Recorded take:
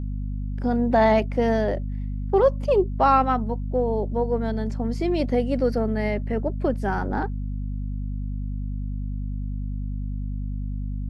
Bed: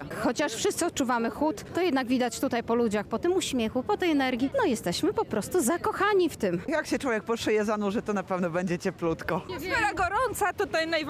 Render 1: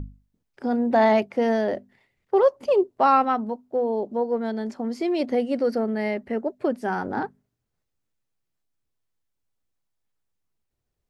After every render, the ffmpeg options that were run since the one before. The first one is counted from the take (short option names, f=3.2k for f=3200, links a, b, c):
-af "bandreject=f=50:t=h:w=6,bandreject=f=100:t=h:w=6,bandreject=f=150:t=h:w=6,bandreject=f=200:t=h:w=6,bandreject=f=250:t=h:w=6"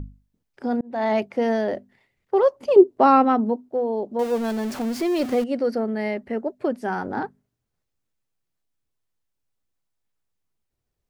-filter_complex "[0:a]asettb=1/sr,asplit=3[a][b][c];[a]atrim=end=2.764[d];[b]atrim=start=2.76:end=3.69,asetpts=PTS-STARTPTS,afade=t=in:d=0.004:c=qsin,afade=t=out:st=0.926:d=0.004:c=qsin,equalizer=f=320:w=0.93:g=10.5[e];[c]atrim=start=3.686[f];[d][e]acrossfade=d=0.004:c1=hsin:c2=qsin[g];[g][f]acrossfade=d=0.004:c1=qsin:c2=hsin,asettb=1/sr,asplit=3[h][i][j];[h]atrim=end=4.194[k];[i]atrim=start=4.19:end=5.44,asetpts=PTS-STARTPTS,afade=t=in:d=0.004:c=qsin,afade=t=out:st=1.246:d=0.004:c=qsin,aeval=exprs='val(0)+0.5*0.0335*sgn(val(0))':c=same[l];[j]atrim=start=5.436[m];[k][l]acrossfade=d=0.004:c1=hsin:c2=qsin[n];[n][m]acrossfade=d=0.004:c1=qsin:c2=hsin,asplit=2[o][p];[o]atrim=end=0.81,asetpts=PTS-STARTPTS,afade=t=out:st=0.806:d=0.004:c=hsin[q];[p]atrim=start=0.81,asetpts=PTS-STARTPTS,afade=t=in:d=0.44[r];[q][r]concat=n=2:v=0:a=1"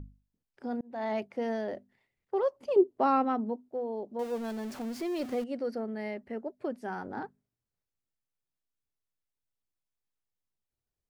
-af "volume=-10.5dB"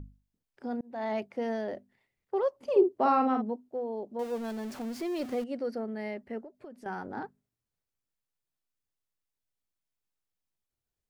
-filter_complex "[0:a]asettb=1/sr,asplit=3[a][b][c];[a]atrim=end=2.584[d];[b]atrim=start=2.58:end=3.42,asetpts=PTS-STARTPTS,afade=t=in:d=0.004:c=qsin,afade=t=out:st=0.836:d=0.004:c=qsin,asplit=2[e][f];[f]adelay=50,volume=-6dB[g];[e][g]amix=inputs=2:normalize=0,atrim=end_sample=37044[h];[c]atrim=start=3.416[i];[d][h]acrossfade=d=0.004:c1=hsin:c2=qsin[j];[j][i]acrossfade=d=0.004:c1=qsin:c2=hsin,asettb=1/sr,asplit=3[k][l][m];[k]atrim=end=6.444[n];[l]atrim=start=6.44:end=6.86,asetpts=PTS-STARTPTS,afade=t=in:d=0.004:c=qsin,afade=t=out:st=0.416:d=0.004:c=qsin,acompressor=threshold=-43dB:ratio=6:attack=3.2:release=140:knee=1:detection=peak[o];[m]atrim=start=6.856[p];[n][o]acrossfade=d=0.004:c1=hsin:c2=qsin[q];[q][p]acrossfade=d=0.004:c1=qsin:c2=hsin"